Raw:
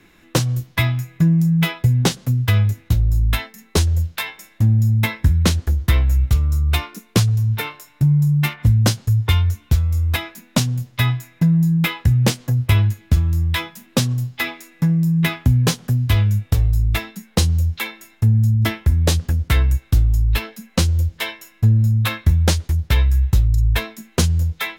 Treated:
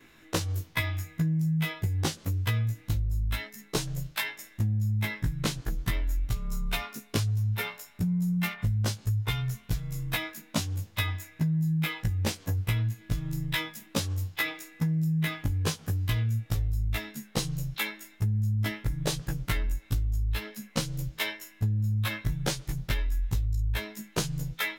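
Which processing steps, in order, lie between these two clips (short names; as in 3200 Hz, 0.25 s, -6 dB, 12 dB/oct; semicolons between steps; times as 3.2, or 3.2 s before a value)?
short-time reversal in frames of 37 ms; low shelf 420 Hz -3.5 dB; compressor 6:1, threshold -25 dBFS, peak gain reduction 11 dB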